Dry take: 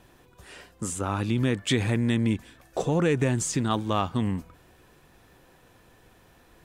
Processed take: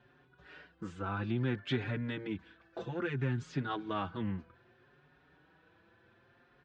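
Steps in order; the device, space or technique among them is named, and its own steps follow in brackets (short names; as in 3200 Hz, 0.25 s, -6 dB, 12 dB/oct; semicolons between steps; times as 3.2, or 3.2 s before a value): barber-pole flanger into a guitar amplifier (endless flanger 5.2 ms +0.62 Hz; soft clip -17 dBFS, distortion -21 dB; speaker cabinet 80–4100 Hz, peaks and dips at 140 Hz +4 dB, 360 Hz +4 dB, 1500 Hz +10 dB); 2.32–3.48 dynamic EQ 590 Hz, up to -6 dB, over -38 dBFS, Q 0.87; gain -7 dB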